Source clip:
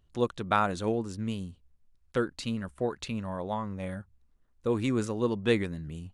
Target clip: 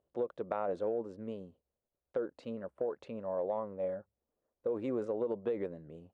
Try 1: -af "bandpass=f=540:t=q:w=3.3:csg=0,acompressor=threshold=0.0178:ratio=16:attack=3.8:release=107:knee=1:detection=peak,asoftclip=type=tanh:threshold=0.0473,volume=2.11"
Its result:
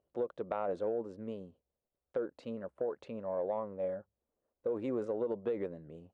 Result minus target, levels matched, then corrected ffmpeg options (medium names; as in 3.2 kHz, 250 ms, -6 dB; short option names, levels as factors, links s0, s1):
saturation: distortion +13 dB
-af "bandpass=f=540:t=q:w=3.3:csg=0,acompressor=threshold=0.0178:ratio=16:attack=3.8:release=107:knee=1:detection=peak,asoftclip=type=tanh:threshold=0.106,volume=2.11"